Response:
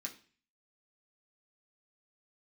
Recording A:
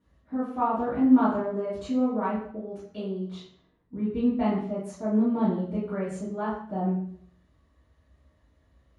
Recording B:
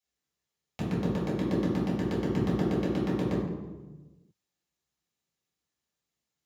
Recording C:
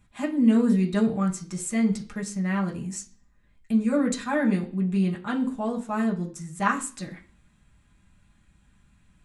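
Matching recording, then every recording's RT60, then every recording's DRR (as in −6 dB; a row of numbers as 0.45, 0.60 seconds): C; 0.60, 1.2, 0.40 seconds; −11.5, −8.0, −1.5 decibels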